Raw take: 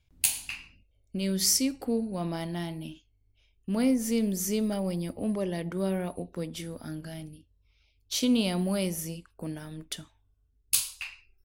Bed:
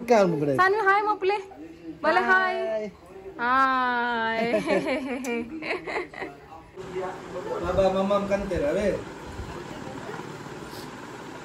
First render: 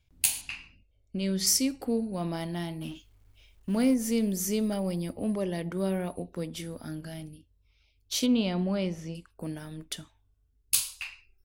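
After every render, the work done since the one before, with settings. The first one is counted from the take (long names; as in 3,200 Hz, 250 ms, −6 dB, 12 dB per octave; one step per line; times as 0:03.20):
0:00.41–0:01.47: high-frequency loss of the air 52 metres
0:02.81–0:03.94: mu-law and A-law mismatch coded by mu
0:08.26–0:09.15: high-frequency loss of the air 160 metres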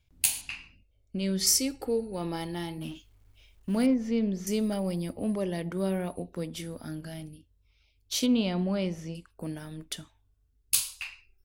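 0:01.40–0:02.78: comb filter 2.3 ms, depth 53%
0:03.86–0:04.47: high-frequency loss of the air 220 metres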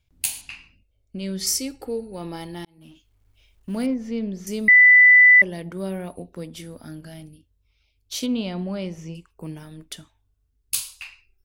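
0:02.65–0:03.71: fade in equal-power
0:04.68–0:05.42: beep over 1,990 Hz −8 dBFS
0:08.97–0:09.63: EQ curve with evenly spaced ripples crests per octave 0.74, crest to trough 7 dB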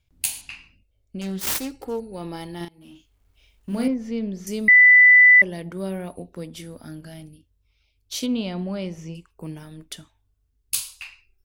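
0:01.21–0:02.00: phase distortion by the signal itself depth 0.53 ms
0:02.57–0:03.88: double-tracking delay 35 ms −4 dB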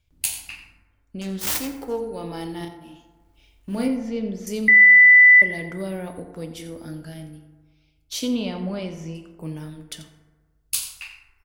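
slap from a distant wall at 15 metres, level −13 dB
feedback delay network reverb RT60 1.4 s, low-frequency decay 0.95×, high-frequency decay 0.4×, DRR 6.5 dB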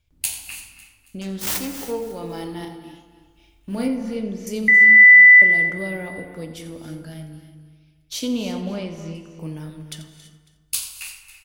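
repeating echo 275 ms, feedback 40%, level −18 dB
reverb whose tail is shaped and stops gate 360 ms rising, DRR 11.5 dB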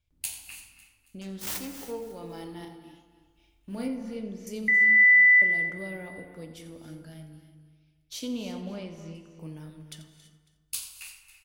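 level −9 dB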